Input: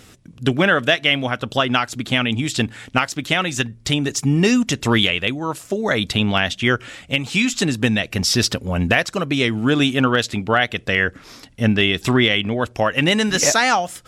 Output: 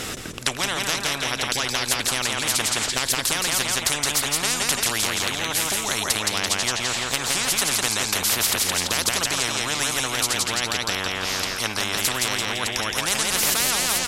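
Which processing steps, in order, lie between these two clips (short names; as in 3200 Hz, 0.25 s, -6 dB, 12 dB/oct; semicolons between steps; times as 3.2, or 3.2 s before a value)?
feedback echo 0.169 s, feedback 38%, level -6 dB; spectral compressor 10:1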